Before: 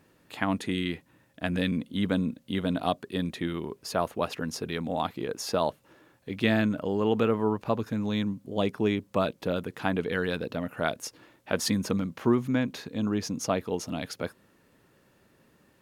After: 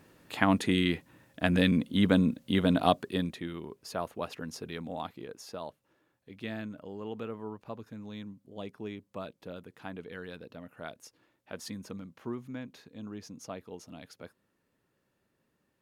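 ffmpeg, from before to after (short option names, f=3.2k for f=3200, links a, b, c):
-af "volume=3dB,afade=t=out:st=2.97:d=0.43:silence=0.316228,afade=t=out:st=4.81:d=0.72:silence=0.446684"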